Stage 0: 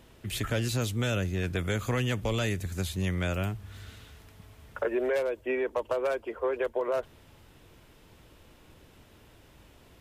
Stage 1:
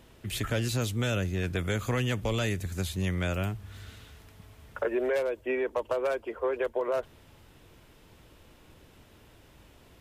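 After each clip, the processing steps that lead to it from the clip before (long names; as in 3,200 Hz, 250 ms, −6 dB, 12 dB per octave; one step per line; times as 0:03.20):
no processing that can be heard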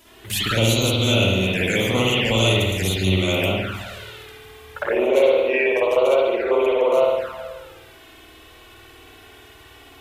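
spring reverb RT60 1.5 s, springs 53 ms, chirp 20 ms, DRR −8.5 dB
flanger swept by the level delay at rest 3.1 ms, full sweep at −18 dBFS
spectral tilt +2.5 dB per octave
level +6.5 dB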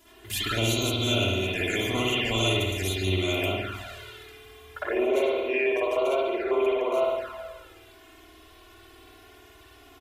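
comb filter 2.9 ms, depth 67%
level −7.5 dB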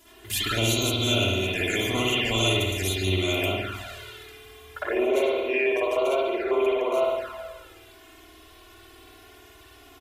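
parametric band 11,000 Hz +3 dB 2.3 octaves
level +1 dB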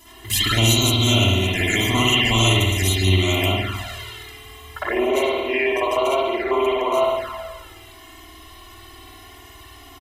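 comb filter 1 ms, depth 60%
level +6 dB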